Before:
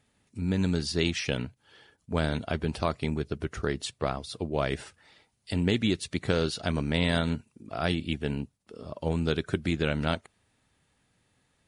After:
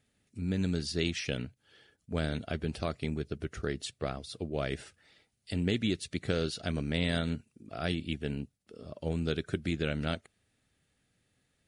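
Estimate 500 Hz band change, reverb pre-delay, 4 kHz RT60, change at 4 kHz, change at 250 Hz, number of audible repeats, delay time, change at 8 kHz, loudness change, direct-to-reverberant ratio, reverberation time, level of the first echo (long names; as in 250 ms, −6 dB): −5.0 dB, no reverb audible, no reverb audible, −4.0 dB, −4.0 dB, no echo audible, no echo audible, −4.0 dB, −4.5 dB, no reverb audible, no reverb audible, no echo audible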